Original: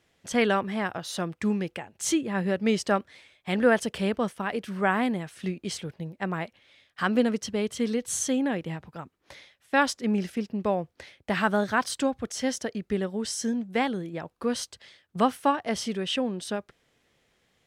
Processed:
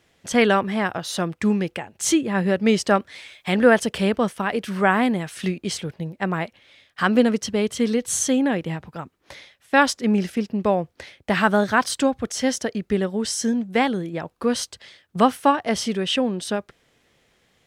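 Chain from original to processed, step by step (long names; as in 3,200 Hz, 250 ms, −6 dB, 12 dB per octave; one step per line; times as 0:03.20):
0:02.95–0:05.58: one half of a high-frequency compander encoder only
level +6 dB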